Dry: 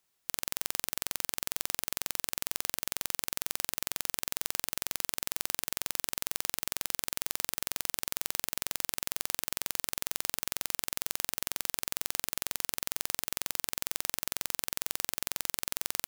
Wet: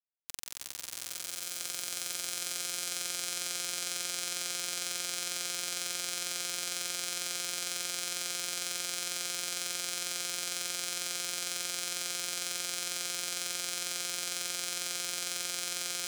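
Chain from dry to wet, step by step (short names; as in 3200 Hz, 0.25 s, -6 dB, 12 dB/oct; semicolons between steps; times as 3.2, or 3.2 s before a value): LPF 9700 Hz 12 dB/oct; high shelf 4600 Hz +7.5 dB; resonator 110 Hz, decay 0.18 s, harmonics odd, mix 50%; soft clip -22.5 dBFS, distortion -5 dB; bit-crush 5-bit; on a send: swelling echo 0.164 s, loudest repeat 5, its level -3 dB; on the sum: gain +4 dB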